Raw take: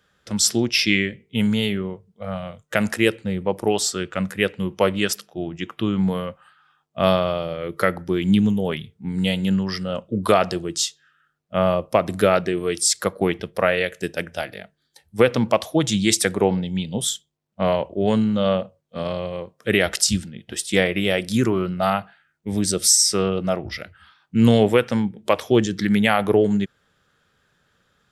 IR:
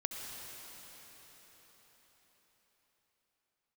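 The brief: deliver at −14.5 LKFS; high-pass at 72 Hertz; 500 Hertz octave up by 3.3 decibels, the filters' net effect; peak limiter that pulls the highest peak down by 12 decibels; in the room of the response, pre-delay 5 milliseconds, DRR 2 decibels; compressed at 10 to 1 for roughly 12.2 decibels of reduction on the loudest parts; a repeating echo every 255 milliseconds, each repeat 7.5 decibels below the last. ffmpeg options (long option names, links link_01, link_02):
-filter_complex "[0:a]highpass=72,equalizer=frequency=500:width_type=o:gain=4,acompressor=threshold=-21dB:ratio=10,alimiter=limit=-17.5dB:level=0:latency=1,aecho=1:1:255|510|765|1020|1275:0.422|0.177|0.0744|0.0312|0.0131,asplit=2[link_01][link_02];[1:a]atrim=start_sample=2205,adelay=5[link_03];[link_02][link_03]afir=irnorm=-1:irlink=0,volume=-4dB[link_04];[link_01][link_04]amix=inputs=2:normalize=0,volume=11.5dB"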